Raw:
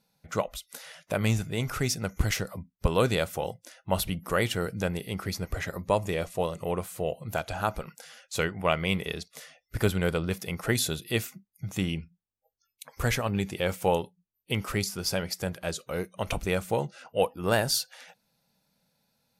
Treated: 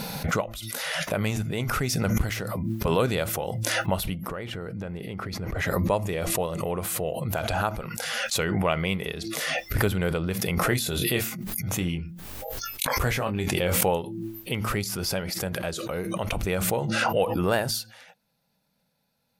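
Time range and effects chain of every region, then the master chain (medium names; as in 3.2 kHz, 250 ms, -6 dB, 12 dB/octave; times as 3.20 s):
2.29–2.99 s: high-pass 130 Hz 6 dB/octave + de-esser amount 55%
4.28–5.59 s: low-pass 2.1 kHz 6 dB/octave + compression 10:1, threshold -29 dBFS
10.55–13.81 s: doubling 23 ms -7 dB + decay stretcher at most 67 dB/s
whole clip: peaking EQ 6.8 kHz -4.5 dB 1.4 oct; de-hum 111 Hz, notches 3; swell ahead of each attack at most 21 dB/s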